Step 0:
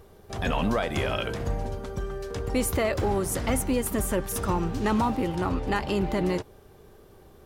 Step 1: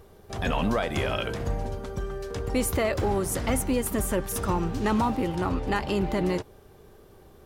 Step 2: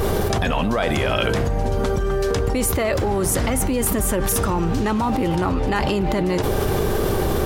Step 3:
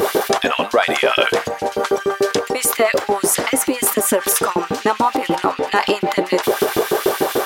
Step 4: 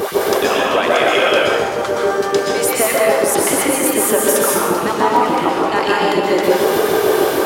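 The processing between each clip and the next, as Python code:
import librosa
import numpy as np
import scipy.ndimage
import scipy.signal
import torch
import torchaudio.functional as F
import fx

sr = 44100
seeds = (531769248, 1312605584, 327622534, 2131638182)

y1 = x
y2 = fx.env_flatten(y1, sr, amount_pct=100)
y2 = y2 * librosa.db_to_amplitude(2.0)
y3 = fx.filter_lfo_highpass(y2, sr, shape='saw_up', hz=6.8, low_hz=230.0, high_hz=3400.0, q=1.5)
y3 = y3 * librosa.db_to_amplitude(5.5)
y4 = fx.rev_plate(y3, sr, seeds[0], rt60_s=1.8, hf_ratio=0.6, predelay_ms=110, drr_db=-4.5)
y4 = y4 * librosa.db_to_amplitude(-3.0)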